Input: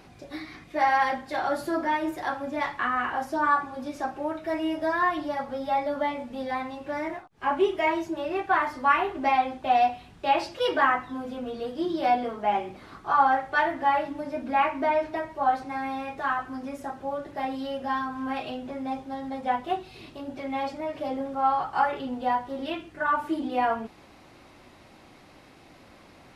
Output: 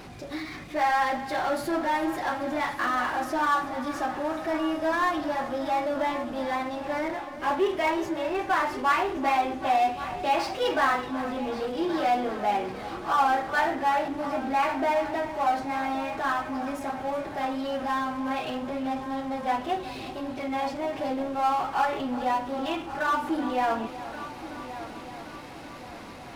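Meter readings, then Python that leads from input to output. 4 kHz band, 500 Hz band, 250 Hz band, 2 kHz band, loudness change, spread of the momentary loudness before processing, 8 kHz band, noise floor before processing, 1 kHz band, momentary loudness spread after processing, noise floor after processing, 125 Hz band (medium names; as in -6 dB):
+2.0 dB, +0.5 dB, +1.5 dB, -0.5 dB, -0.5 dB, 11 LU, no reading, -53 dBFS, -0.5 dB, 11 LU, -41 dBFS, +3.0 dB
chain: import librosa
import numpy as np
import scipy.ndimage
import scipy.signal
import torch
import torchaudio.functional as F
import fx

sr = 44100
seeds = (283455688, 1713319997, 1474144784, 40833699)

y = fx.power_curve(x, sr, exponent=0.7)
y = fx.echo_heads(y, sr, ms=375, heads='first and third', feedback_pct=62, wet_db=-15.0)
y = y * 10.0 ** (-4.5 / 20.0)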